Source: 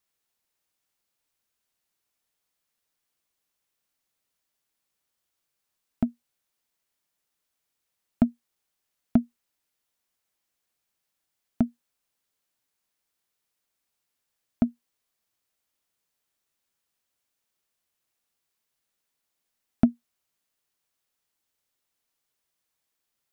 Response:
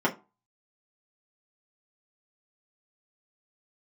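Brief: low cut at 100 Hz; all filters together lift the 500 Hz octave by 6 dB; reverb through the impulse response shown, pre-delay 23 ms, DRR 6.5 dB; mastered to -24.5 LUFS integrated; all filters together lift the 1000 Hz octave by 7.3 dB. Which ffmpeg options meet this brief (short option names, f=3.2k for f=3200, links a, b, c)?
-filter_complex "[0:a]highpass=100,equalizer=f=500:t=o:g=4.5,equalizer=f=1k:t=o:g=9,asplit=2[a][b];[1:a]atrim=start_sample=2205,adelay=23[c];[b][c]afir=irnorm=-1:irlink=0,volume=-19.5dB[d];[a][d]amix=inputs=2:normalize=0,volume=1.5dB"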